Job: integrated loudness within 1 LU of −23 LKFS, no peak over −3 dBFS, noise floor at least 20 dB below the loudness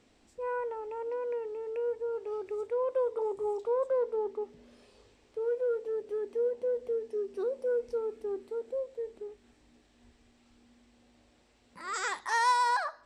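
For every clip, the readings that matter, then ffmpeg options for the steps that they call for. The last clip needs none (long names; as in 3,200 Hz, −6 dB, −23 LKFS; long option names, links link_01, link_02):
integrated loudness −33.0 LKFS; sample peak −18.0 dBFS; target loudness −23.0 LKFS
→ -af "volume=10dB"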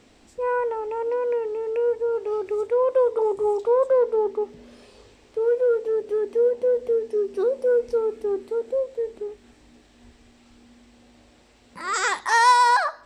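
integrated loudness −23.0 LKFS; sample peak −8.0 dBFS; background noise floor −56 dBFS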